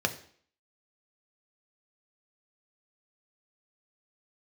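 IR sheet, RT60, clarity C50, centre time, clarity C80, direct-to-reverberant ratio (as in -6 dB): 0.55 s, 14.0 dB, 8 ms, 17.0 dB, 5.0 dB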